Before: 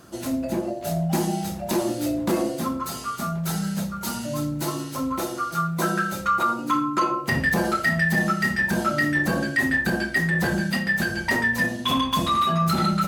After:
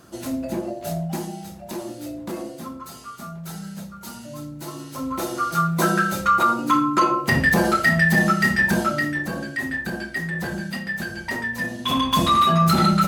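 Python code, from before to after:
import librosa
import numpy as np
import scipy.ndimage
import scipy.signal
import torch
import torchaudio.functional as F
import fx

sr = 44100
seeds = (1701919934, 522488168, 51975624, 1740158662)

y = fx.gain(x, sr, db=fx.line((0.92, -1.0), (1.33, -8.0), (4.61, -8.0), (5.46, 4.0), (8.7, 4.0), (9.26, -5.0), (11.55, -5.0), (12.22, 4.5)))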